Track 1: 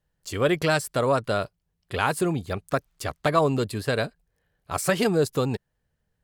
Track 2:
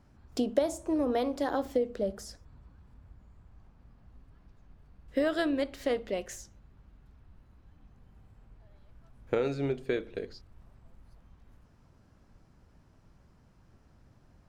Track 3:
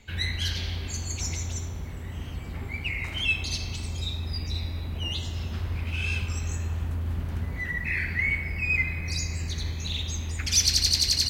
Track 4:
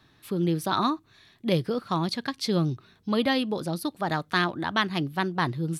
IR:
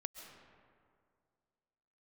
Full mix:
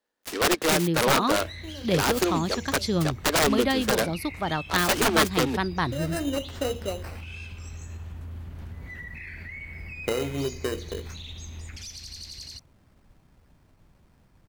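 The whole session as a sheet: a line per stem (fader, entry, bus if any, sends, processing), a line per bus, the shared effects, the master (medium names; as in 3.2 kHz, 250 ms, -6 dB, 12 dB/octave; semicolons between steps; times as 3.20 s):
+1.5 dB, 0.00 s, no send, Chebyshev high-pass 210 Hz, order 10; integer overflow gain 16.5 dB; delay time shaken by noise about 2.3 kHz, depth 0.059 ms
+2.0 dB, 0.75 s, no send, hum notches 60/120/180/240/300/360/420/480/540 Hz; sample-rate reducer 3.4 kHz, jitter 0%; auto duck -17 dB, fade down 2.00 s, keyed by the first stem
-5.0 dB, 1.30 s, no send, compression, threshold -29 dBFS, peak gain reduction 11.5 dB; peak limiter -26 dBFS, peak gain reduction 6.5 dB
-0.5 dB, 0.40 s, no send, none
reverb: none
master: none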